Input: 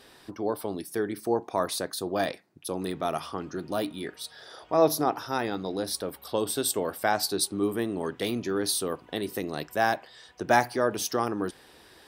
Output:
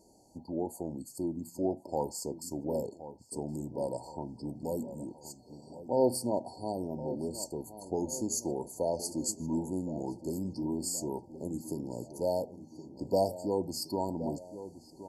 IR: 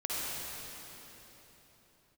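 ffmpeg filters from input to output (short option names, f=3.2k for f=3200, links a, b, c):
-filter_complex "[0:a]asplit=2[a][b];[b]adelay=856,lowpass=f=2k:p=1,volume=-13dB,asplit=2[c][d];[d]adelay=856,lowpass=f=2k:p=1,volume=0.55,asplit=2[e][f];[f]adelay=856,lowpass=f=2k:p=1,volume=0.55,asplit=2[g][h];[h]adelay=856,lowpass=f=2k:p=1,volume=0.55,asplit=2[i][j];[j]adelay=856,lowpass=f=2k:p=1,volume=0.55,asplit=2[k][l];[l]adelay=856,lowpass=f=2k:p=1,volume=0.55[m];[a][c][e][g][i][k][m]amix=inputs=7:normalize=0,asetrate=35280,aresample=44100,afftfilt=real='re*(1-between(b*sr/4096,970,4300))':imag='im*(1-between(b*sr/4096,970,4300))':win_size=4096:overlap=0.75,volume=-5.5dB"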